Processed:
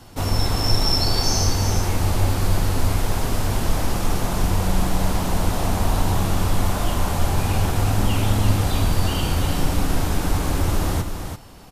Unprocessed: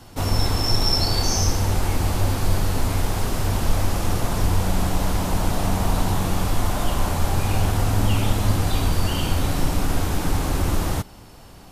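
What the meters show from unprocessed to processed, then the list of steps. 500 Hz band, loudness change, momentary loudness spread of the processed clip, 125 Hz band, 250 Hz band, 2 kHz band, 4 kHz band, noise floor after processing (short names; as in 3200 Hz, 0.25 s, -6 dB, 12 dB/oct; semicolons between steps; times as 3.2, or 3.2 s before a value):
+1.0 dB, +1.0 dB, 5 LU, +1.0 dB, +1.0 dB, +1.0 dB, +1.0 dB, -31 dBFS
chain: echo 0.339 s -7 dB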